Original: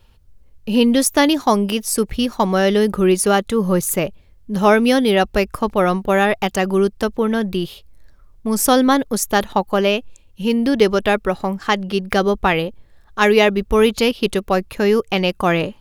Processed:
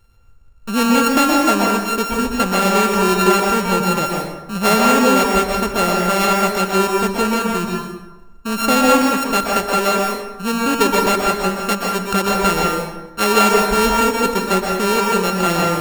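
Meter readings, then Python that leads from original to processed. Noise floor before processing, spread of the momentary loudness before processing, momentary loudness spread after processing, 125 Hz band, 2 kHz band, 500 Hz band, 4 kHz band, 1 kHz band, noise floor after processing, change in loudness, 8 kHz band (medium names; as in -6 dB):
-50 dBFS, 8 LU, 9 LU, 0.0 dB, +2.0 dB, -1.5 dB, +1.5 dB, +4.5 dB, -40 dBFS, +1.0 dB, +2.0 dB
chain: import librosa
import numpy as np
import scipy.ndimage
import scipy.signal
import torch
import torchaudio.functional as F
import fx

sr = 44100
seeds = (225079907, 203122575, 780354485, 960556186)

y = np.r_[np.sort(x[:len(x) // 32 * 32].reshape(-1, 32), axis=1).ravel(), x[len(x) // 32 * 32:]]
y = fx.rev_plate(y, sr, seeds[0], rt60_s=1.1, hf_ratio=0.6, predelay_ms=110, drr_db=-1.5)
y = F.gain(torch.from_numpy(y), -3.0).numpy()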